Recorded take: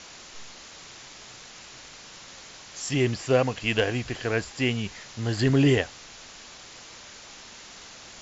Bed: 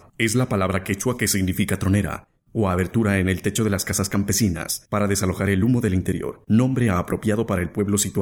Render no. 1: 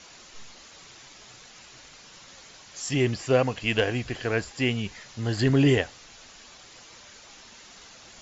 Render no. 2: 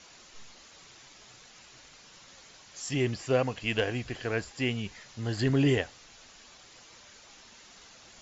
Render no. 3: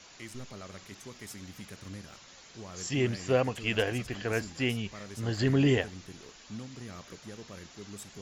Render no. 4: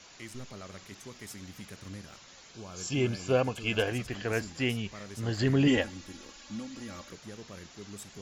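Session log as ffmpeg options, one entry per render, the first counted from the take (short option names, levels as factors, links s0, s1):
-af "afftdn=nr=6:nf=-46"
-af "volume=0.596"
-filter_complex "[1:a]volume=0.0596[s0];[0:a][s0]amix=inputs=2:normalize=0"
-filter_complex "[0:a]asettb=1/sr,asplit=3[s0][s1][s2];[s0]atrim=end=2.524[s3];[s1]atrim=start=2.52:end=3.88,asetpts=PTS-STARTPTS,afade=t=in:d=0.004:c=qsin,afade=t=out:st=1.356:d=0.004:c=qsin,asuperstop=centerf=1900:order=20:qfactor=6.6[s4];[s2]atrim=start=3.876[s5];[s3][s4]acrossfade=d=0.004:c1=hsin:c2=qsin[s6];[s6][s5]acrossfade=d=0.004:c1=qsin:c2=hsin,asettb=1/sr,asplit=3[s7][s8][s9];[s7]atrim=end=5.674[s10];[s8]atrim=start=5.67:end=7.1,asetpts=PTS-STARTPTS,afade=t=in:d=0.004:c=qsin,afade=t=out:st=1.426:d=0.004:c=qsin,aecho=1:1:3.6:0.81,atrim=end_sample=63063[s11];[s9]atrim=start=7.096[s12];[s10][s11]acrossfade=d=0.004:c1=hsin:c2=qsin[s13];[s13][s12]acrossfade=d=0.004:c1=qsin:c2=hsin"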